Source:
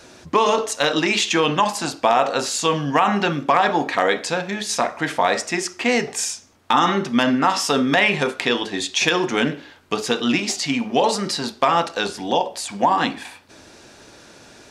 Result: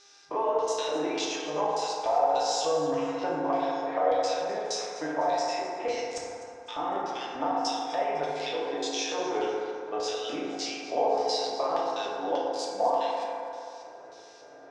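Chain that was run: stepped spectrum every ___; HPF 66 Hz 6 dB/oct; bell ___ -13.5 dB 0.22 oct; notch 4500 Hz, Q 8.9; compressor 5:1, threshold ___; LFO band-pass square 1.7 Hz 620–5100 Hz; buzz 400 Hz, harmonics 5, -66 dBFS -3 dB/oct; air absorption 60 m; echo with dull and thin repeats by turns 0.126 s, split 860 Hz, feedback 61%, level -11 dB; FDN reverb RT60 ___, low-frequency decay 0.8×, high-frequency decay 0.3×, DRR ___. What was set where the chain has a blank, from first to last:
50 ms, 230 Hz, -23 dBFS, 2.7 s, -4.5 dB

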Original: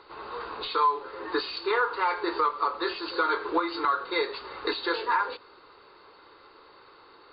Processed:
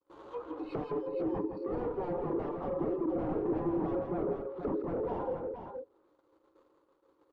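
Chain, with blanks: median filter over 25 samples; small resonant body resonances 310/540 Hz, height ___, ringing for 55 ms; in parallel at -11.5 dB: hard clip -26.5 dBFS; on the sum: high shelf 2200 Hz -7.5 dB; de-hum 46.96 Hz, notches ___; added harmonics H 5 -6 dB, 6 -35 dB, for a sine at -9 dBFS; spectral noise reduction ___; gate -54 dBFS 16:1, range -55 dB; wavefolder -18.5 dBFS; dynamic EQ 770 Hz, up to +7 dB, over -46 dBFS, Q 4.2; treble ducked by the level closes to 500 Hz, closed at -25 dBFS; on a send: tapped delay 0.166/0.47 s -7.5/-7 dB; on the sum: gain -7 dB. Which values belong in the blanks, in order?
11 dB, 18, 15 dB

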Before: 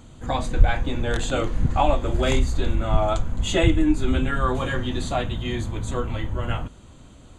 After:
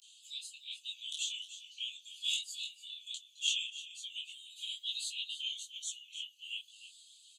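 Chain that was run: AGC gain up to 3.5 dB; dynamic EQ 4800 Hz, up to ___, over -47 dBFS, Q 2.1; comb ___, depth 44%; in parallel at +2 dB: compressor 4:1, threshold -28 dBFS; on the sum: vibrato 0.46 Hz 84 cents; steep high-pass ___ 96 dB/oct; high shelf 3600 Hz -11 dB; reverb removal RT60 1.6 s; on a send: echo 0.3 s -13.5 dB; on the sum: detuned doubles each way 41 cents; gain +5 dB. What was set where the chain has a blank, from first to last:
-6 dB, 3.6 ms, 2800 Hz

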